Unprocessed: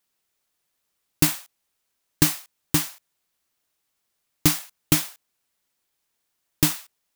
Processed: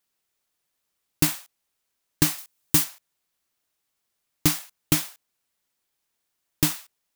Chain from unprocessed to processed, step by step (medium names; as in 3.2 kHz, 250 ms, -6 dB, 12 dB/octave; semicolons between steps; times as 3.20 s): 2.38–2.84 s: treble shelf 5.4 kHz +7 dB; trim -2 dB